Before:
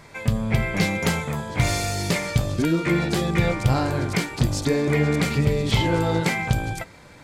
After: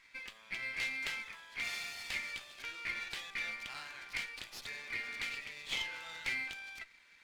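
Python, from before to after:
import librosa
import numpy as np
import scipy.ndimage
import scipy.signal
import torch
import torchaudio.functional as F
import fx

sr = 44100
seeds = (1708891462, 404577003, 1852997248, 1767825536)

y = fx.ladder_bandpass(x, sr, hz=2900.0, resonance_pct=30)
y = fx.running_max(y, sr, window=3)
y = y * librosa.db_to_amplitude(1.0)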